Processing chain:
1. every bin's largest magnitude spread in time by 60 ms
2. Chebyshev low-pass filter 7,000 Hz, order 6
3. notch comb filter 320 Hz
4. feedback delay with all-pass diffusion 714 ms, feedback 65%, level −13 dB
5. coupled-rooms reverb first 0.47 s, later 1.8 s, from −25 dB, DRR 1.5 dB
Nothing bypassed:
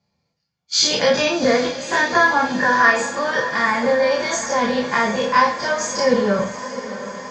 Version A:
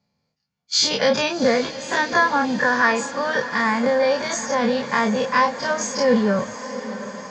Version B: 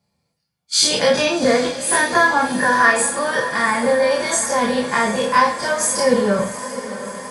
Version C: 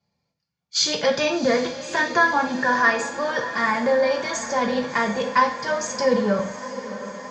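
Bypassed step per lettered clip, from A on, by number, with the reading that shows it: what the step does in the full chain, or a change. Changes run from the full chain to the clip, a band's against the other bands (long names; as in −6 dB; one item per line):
5, 250 Hz band +3.0 dB
2, 8 kHz band +5.0 dB
1, change in integrated loudness −3.5 LU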